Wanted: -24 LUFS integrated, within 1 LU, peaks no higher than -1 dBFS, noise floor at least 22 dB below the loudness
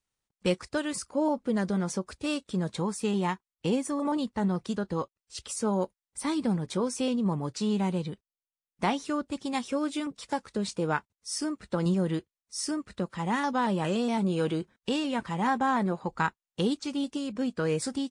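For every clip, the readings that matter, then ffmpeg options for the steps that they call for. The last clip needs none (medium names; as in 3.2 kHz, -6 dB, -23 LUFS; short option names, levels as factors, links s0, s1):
loudness -30.5 LUFS; peak level -13.5 dBFS; loudness target -24.0 LUFS
-> -af "volume=2.11"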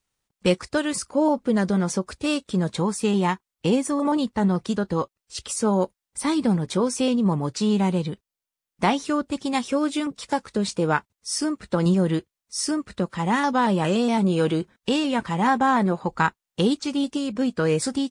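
loudness -24.0 LUFS; peak level -7.0 dBFS; noise floor -88 dBFS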